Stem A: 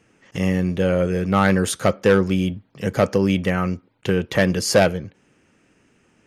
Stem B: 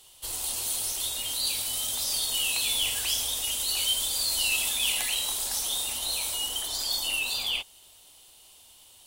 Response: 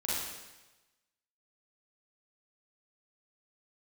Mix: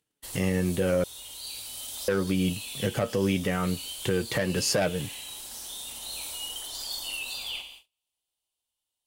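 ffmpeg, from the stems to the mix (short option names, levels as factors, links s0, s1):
-filter_complex "[0:a]flanger=delay=6.6:depth=2:regen=53:speed=0.82:shape=sinusoidal,volume=1.26,asplit=3[s0][s1][s2];[s0]atrim=end=1.04,asetpts=PTS-STARTPTS,afade=t=out:st=1.036:d=0.004:c=hsin[s3];[s1]atrim=start=1.04:end=2.08,asetpts=PTS-STARTPTS,volume=0[s4];[s2]atrim=start=2.08,asetpts=PTS-STARTPTS,afade=t=in:d=0.004:c=hsin[s5];[s3][s4][s5]concat=n=3:v=0:a=1,asplit=2[s6][s7];[1:a]volume=0.398,asplit=2[s8][s9];[s9]volume=0.282[s10];[s7]apad=whole_len=399867[s11];[s8][s11]sidechaincompress=threshold=0.0316:ratio=8:attack=16:release=1170[s12];[2:a]atrim=start_sample=2205[s13];[s10][s13]afir=irnorm=-1:irlink=0[s14];[s6][s12][s14]amix=inputs=3:normalize=0,acompressor=mode=upward:threshold=0.00501:ratio=2.5,agate=range=0.0251:threshold=0.00398:ratio=16:detection=peak,alimiter=limit=0.168:level=0:latency=1:release=165"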